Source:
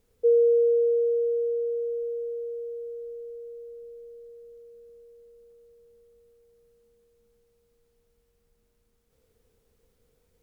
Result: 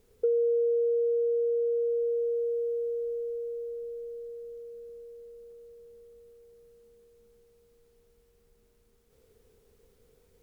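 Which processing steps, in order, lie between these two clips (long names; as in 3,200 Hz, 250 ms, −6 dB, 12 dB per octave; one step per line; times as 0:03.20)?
parametric band 400 Hz +8 dB 0.26 octaves
downward compressor 4 to 1, threshold −30 dBFS, peak gain reduction 12 dB
level +3.5 dB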